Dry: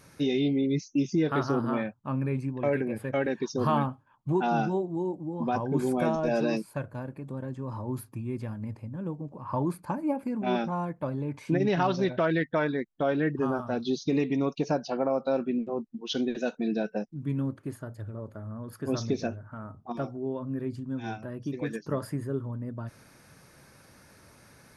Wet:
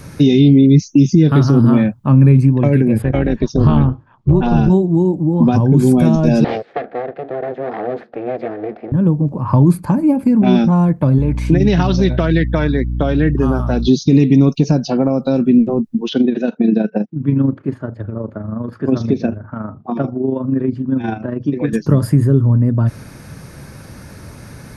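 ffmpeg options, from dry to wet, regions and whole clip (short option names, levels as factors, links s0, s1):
-filter_complex "[0:a]asettb=1/sr,asplit=3[s0][s1][s2];[s0]atrim=end=3.024[s3];[s1]atrim=start=3.02:end=4.7,asetpts=PTS-STARTPTS,afade=t=in:d=0.004:c=qsin,afade=t=out:st=1.676:d=0.004:c=qsin,lowpass=4700,tremolo=f=220:d=0.667[s4];[s2]atrim=start=4.696[s5];[s3][s4]acrossfade=d=0.004:c1=hsin:c2=qsin[s6];[s6][s5]acrossfade=d=0.004:c1=qsin:c2=hsin,asettb=1/sr,asplit=3[s7][s8][s9];[s7]atrim=end=6.444[s10];[s8]atrim=start=6.44:end=8.92,asetpts=PTS-STARTPTS,afade=t=in:d=0.004:c=qsin,afade=t=out:st=2.476:d=0.004:c=qsin,aeval=exprs='abs(val(0))':c=same,highpass=390,equalizer=f=480:t=q:w=4:g=8,equalizer=f=720:t=q:w=4:g=10,equalizer=f=1000:t=q:w=4:g=-9,equalizer=f=1800:t=q:w=4:g=5,equalizer=f=2900:t=q:w=4:g=-6,lowpass=f=3400:w=0.5412,lowpass=f=3400:w=1.3066[s11];[s9]atrim=start=8.916[s12];[s10][s11]acrossfade=d=0.004:c1=hsin:c2=qsin[s13];[s13][s12]acrossfade=d=0.004:c1=qsin:c2=hsin,asettb=1/sr,asplit=3[s14][s15][s16];[s14]atrim=end=11.184[s17];[s15]atrim=start=11.18:end=13.88,asetpts=PTS-STARTPTS,afade=t=in:d=0.004:c=qsin,afade=t=out:st=2.696:d=0.004:c=qsin,lowshelf=f=320:g=-8.5,aeval=exprs='val(0)+0.00708*(sin(2*PI*60*n/s)+sin(2*PI*2*60*n/s)/2+sin(2*PI*3*60*n/s)/3+sin(2*PI*4*60*n/s)/4+sin(2*PI*5*60*n/s)/5)':c=same[s18];[s16]atrim=start=13.876[s19];[s17][s18]acrossfade=d=0.004:c1=hsin:c2=qsin[s20];[s20][s19]acrossfade=d=0.004:c1=qsin:c2=hsin,asettb=1/sr,asplit=3[s21][s22][s23];[s21]atrim=end=16.094[s24];[s22]atrim=start=16.09:end=21.73,asetpts=PTS-STARTPTS,afade=t=in:d=0.004:c=qsin,afade=t=out:st=5.636:d=0.004:c=qsin,highpass=190,lowpass=2800,tremolo=f=25:d=0.519[s25];[s23]atrim=start=21.726[s26];[s24][s25]acrossfade=d=0.004:c1=hsin:c2=qsin[s27];[s27][s26]acrossfade=d=0.004:c1=qsin:c2=hsin,lowshelf=f=280:g=12,acrossover=split=290|3000[s28][s29][s30];[s29]acompressor=threshold=0.0224:ratio=6[s31];[s28][s31][s30]amix=inputs=3:normalize=0,alimiter=level_in=5.62:limit=0.891:release=50:level=0:latency=1,volume=0.891"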